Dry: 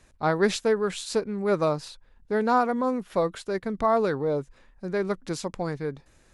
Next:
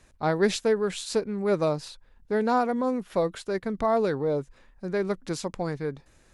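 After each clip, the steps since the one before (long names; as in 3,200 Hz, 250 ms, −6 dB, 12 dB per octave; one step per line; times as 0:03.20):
dynamic equaliser 1,200 Hz, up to −5 dB, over −36 dBFS, Q 1.8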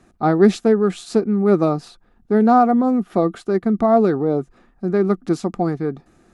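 hollow resonant body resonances 220/330/710/1,200 Hz, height 15 dB, ringing for 30 ms
level −2 dB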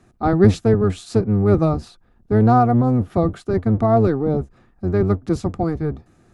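sub-octave generator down 1 octave, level +1 dB
level −2 dB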